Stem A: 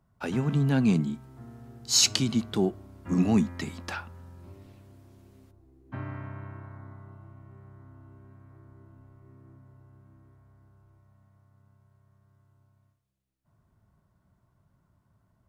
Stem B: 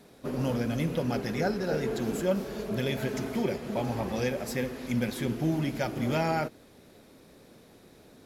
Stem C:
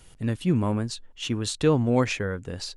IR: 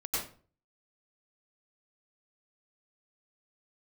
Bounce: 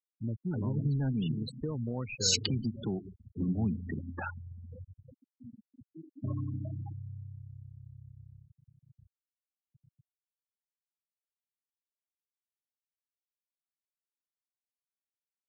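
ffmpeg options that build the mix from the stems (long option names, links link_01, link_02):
-filter_complex "[0:a]dynaudnorm=framelen=250:gausssize=9:maxgain=4.5dB,highshelf=frequency=2400:gain=-8.5,adelay=300,volume=-1.5dB,asplit=2[link_01][link_02];[link_02]volume=-22dB[link_03];[1:a]equalizer=frequency=3800:width=4.6:gain=5,bandreject=frequency=50:width_type=h:width=6,bandreject=frequency=100:width_type=h:width=6,bandreject=frequency=150:width_type=h:width=6,bandreject=frequency=200:width_type=h:width=6,adelay=500,volume=-19.5dB,asplit=2[link_04][link_05];[link_05]volume=-13.5dB[link_06];[2:a]asoftclip=type=tanh:threshold=-10.5dB,volume=-6.5dB[link_07];[3:a]atrim=start_sample=2205[link_08];[link_03][link_06]amix=inputs=2:normalize=0[link_09];[link_09][link_08]afir=irnorm=-1:irlink=0[link_10];[link_01][link_04][link_07][link_10]amix=inputs=4:normalize=0,afftfilt=real='re*gte(hypot(re,im),0.0501)':imag='im*gte(hypot(re,im),0.0501)':win_size=1024:overlap=0.75,acrossover=split=130|3000[link_11][link_12][link_13];[link_12]acompressor=threshold=-34dB:ratio=10[link_14];[link_11][link_14][link_13]amix=inputs=3:normalize=0"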